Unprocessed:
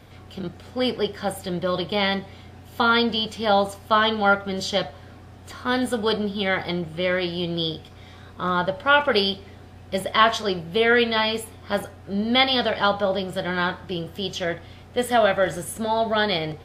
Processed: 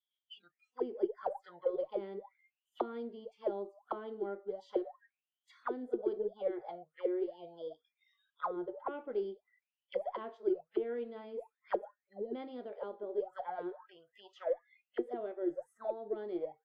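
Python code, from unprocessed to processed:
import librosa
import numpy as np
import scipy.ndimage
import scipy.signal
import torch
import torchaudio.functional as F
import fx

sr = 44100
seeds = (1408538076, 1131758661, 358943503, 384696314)

y = fx.noise_reduce_blind(x, sr, reduce_db=29)
y = fx.auto_wah(y, sr, base_hz=350.0, top_hz=3300.0, q=16.0, full_db=-19.5, direction='down')
y = fx.cheby_harmonics(y, sr, harmonics=(8,), levels_db=(-44,), full_scale_db=-21.5)
y = y * librosa.db_to_amplitude(2.0)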